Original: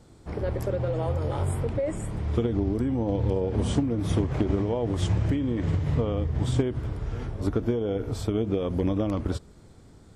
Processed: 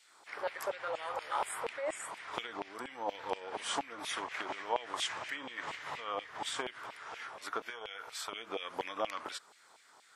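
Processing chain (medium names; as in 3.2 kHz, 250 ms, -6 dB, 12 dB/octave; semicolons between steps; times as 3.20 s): LFO high-pass saw down 4.2 Hz 800–2600 Hz; 7.70–8.33 s: peaking EQ 280 Hz -13 dB 1.7 oct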